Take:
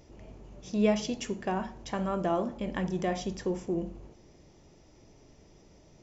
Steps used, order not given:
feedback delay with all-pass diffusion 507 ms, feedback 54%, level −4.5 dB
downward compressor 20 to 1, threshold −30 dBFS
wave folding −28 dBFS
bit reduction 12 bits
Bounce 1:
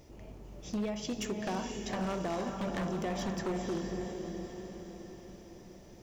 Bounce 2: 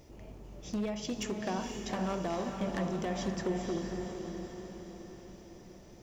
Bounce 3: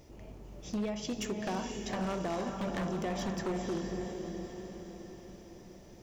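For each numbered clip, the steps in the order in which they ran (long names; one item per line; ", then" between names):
downward compressor, then bit reduction, then feedback delay with all-pass diffusion, then wave folding
downward compressor, then wave folding, then feedback delay with all-pass diffusion, then bit reduction
bit reduction, then downward compressor, then feedback delay with all-pass diffusion, then wave folding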